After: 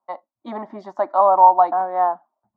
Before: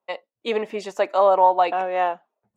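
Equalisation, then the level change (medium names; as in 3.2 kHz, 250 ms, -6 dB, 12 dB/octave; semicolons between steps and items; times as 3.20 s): distance through air 260 m; high-order bell 520 Hz +9 dB 2.5 oct; static phaser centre 1.1 kHz, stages 4; -1.0 dB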